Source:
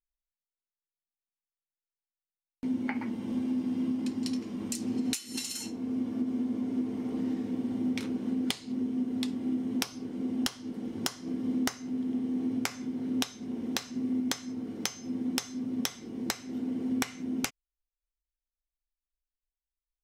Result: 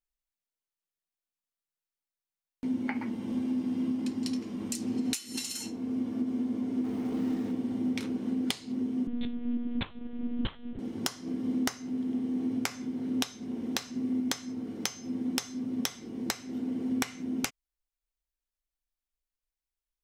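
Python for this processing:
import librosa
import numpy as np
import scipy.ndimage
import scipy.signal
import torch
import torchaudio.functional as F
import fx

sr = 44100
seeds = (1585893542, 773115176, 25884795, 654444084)

y = fx.law_mismatch(x, sr, coded='mu', at=(6.84, 7.52))
y = fx.lpc_monotone(y, sr, seeds[0], pitch_hz=240.0, order=8, at=(9.07, 10.79))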